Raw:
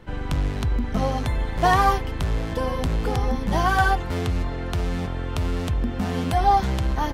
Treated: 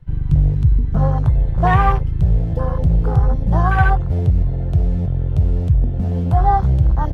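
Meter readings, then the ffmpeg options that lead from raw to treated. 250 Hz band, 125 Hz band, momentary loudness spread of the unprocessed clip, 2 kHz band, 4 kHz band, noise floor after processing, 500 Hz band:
+3.5 dB, +10.5 dB, 8 LU, +0.5 dB, n/a, -21 dBFS, +0.5 dB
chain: -af "afwtdn=0.0562,lowshelf=f=180:t=q:w=3:g=6.5,volume=2dB"

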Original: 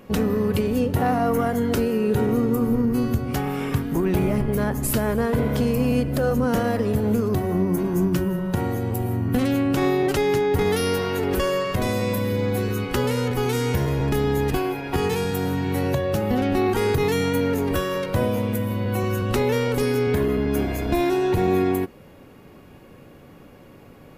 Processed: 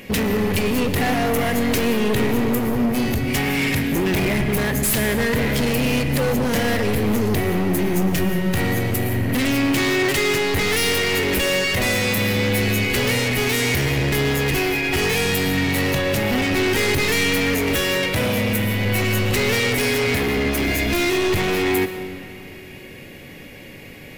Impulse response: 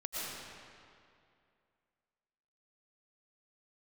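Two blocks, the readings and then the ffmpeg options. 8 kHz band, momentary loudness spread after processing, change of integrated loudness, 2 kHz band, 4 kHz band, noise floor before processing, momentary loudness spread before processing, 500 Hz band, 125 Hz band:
+9.5 dB, 3 LU, +3.0 dB, +11.0 dB, +11.0 dB, -47 dBFS, 4 LU, +0.5 dB, +1.0 dB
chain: -filter_complex "[0:a]highshelf=f=1.6k:t=q:w=3:g=7.5,volume=23.5dB,asoftclip=hard,volume=-23.5dB,asplit=2[a][b];[1:a]atrim=start_sample=2205[c];[b][c]afir=irnorm=-1:irlink=0,volume=-11dB[d];[a][d]amix=inputs=2:normalize=0,volume=4dB"

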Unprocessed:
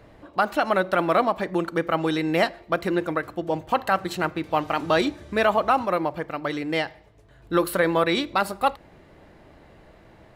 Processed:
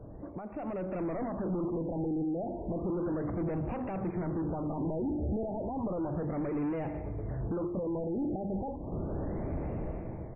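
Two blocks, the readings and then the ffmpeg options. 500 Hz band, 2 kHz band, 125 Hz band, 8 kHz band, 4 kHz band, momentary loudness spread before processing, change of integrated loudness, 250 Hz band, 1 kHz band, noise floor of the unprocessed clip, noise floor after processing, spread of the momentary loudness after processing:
-11.0 dB, -26.0 dB, -0.5 dB, under -35 dB, under -40 dB, 7 LU, -10.5 dB, -4.5 dB, -17.5 dB, -52 dBFS, -42 dBFS, 5 LU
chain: -filter_complex "[0:a]asuperstop=centerf=3200:order=4:qfactor=1.9,equalizer=f=1.6k:w=1.6:g=-9.5,bandreject=f=50:t=h:w=6,bandreject=f=100:t=h:w=6,bandreject=f=150:t=h:w=6,bandreject=f=200:t=h:w=6,bandreject=f=250:t=h:w=6,bandreject=f=300:t=h:w=6,bandreject=f=350:t=h:w=6,acompressor=threshold=-35dB:ratio=10,alimiter=level_in=10.5dB:limit=-24dB:level=0:latency=1:release=22,volume=-10.5dB,dynaudnorm=f=230:g=7:m=16dB,asoftclip=type=tanh:threshold=-34.5dB,tiltshelf=f=690:g=7,asplit=2[a][b];[b]aecho=0:1:489:0.126[c];[a][c]amix=inputs=2:normalize=0,afftfilt=real='re*lt(b*sr/1024,860*pow(2900/860,0.5+0.5*sin(2*PI*0.33*pts/sr)))':imag='im*lt(b*sr/1024,860*pow(2900/860,0.5+0.5*sin(2*PI*0.33*pts/sr)))':win_size=1024:overlap=0.75"

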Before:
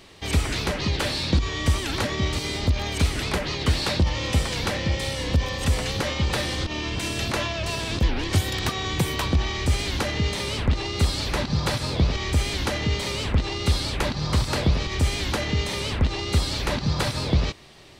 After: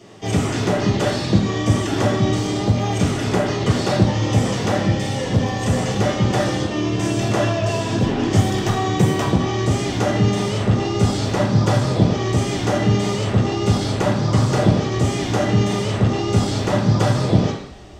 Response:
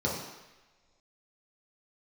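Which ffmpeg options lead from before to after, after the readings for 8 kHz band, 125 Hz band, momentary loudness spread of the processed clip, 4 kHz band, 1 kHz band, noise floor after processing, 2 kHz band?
+2.5 dB, +7.0 dB, 3 LU, -1.5 dB, +7.5 dB, -25 dBFS, +1.0 dB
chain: -filter_complex "[1:a]atrim=start_sample=2205,asetrate=61740,aresample=44100[a];[0:a][a]afir=irnorm=-1:irlink=0,volume=-3dB"

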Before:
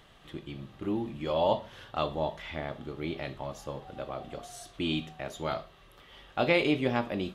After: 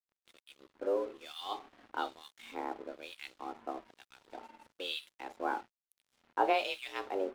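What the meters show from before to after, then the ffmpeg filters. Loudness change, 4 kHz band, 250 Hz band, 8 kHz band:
-5.5 dB, -4.0 dB, -12.5 dB, -8.0 dB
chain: -filter_complex "[0:a]acrossover=split=1600[a][b];[a]aeval=exprs='val(0)*(1-1/2+1/2*cos(2*PI*1.1*n/s))':c=same[c];[b]aeval=exprs='val(0)*(1-1/2-1/2*cos(2*PI*1.1*n/s))':c=same[d];[c][d]amix=inputs=2:normalize=0,afreqshift=190,aeval=exprs='sgn(val(0))*max(abs(val(0))-0.00224,0)':c=same"

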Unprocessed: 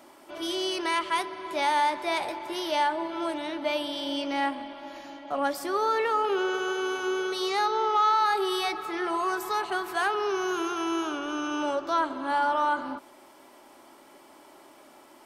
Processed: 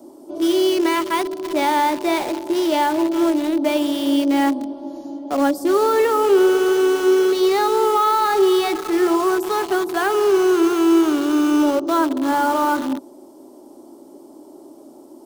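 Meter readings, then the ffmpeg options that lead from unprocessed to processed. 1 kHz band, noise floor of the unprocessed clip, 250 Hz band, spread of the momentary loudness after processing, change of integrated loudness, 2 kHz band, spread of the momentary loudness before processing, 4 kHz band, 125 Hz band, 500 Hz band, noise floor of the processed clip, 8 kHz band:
+5.5 dB, -54 dBFS, +15.5 dB, 7 LU, +9.5 dB, +4.0 dB, 8 LU, +4.5 dB, n/a, +12.5 dB, -44 dBFS, +9.5 dB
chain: -filter_complex "[0:a]equalizer=f=310:w=1:g=13,acrossover=split=200|940|4400[a][b][c][d];[c]acrusher=bits=5:mix=0:aa=0.000001[e];[a][b][e][d]amix=inputs=4:normalize=0,volume=3.5dB"

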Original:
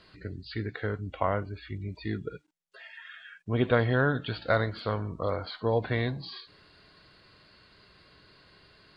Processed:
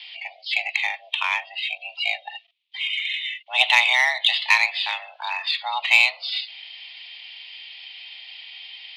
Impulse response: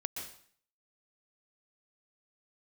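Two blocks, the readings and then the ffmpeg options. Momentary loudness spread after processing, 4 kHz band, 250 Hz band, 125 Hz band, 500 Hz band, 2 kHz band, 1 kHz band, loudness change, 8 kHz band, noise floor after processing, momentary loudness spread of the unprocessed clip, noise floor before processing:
22 LU, +21.0 dB, under -30 dB, under -35 dB, -12.0 dB, +15.0 dB, +7.0 dB, +9.5 dB, n/a, -53 dBFS, 19 LU, -62 dBFS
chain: -af "highpass=f=300:t=q:w=0.5412,highpass=f=300:t=q:w=1.307,lowpass=f=2.8k:t=q:w=0.5176,lowpass=f=2.8k:t=q:w=0.7071,lowpass=f=2.8k:t=q:w=1.932,afreqshift=380,aexciter=amount=15.1:drive=10:freq=2.5k,aeval=exprs='0.891*(cos(1*acos(clip(val(0)/0.891,-1,1)))-cos(1*PI/2))+0.0141*(cos(2*acos(clip(val(0)/0.891,-1,1)))-cos(2*PI/2))':c=same"

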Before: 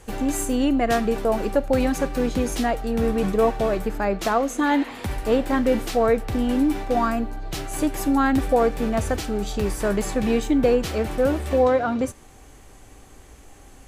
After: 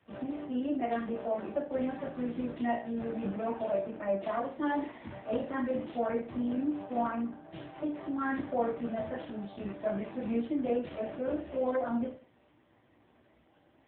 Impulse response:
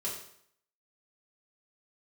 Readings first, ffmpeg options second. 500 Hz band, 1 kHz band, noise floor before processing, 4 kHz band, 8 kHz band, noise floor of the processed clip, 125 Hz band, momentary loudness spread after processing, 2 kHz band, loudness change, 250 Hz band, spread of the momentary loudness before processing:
-12.0 dB, -11.5 dB, -47 dBFS, -19.5 dB, under -40 dB, -66 dBFS, -15.5 dB, 7 LU, -13.0 dB, -11.5 dB, -11.0 dB, 6 LU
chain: -filter_complex "[1:a]atrim=start_sample=2205,asetrate=70560,aresample=44100[a];[0:a][a]afir=irnorm=-1:irlink=0,volume=-9dB" -ar 8000 -c:a libopencore_amrnb -b:a 5900

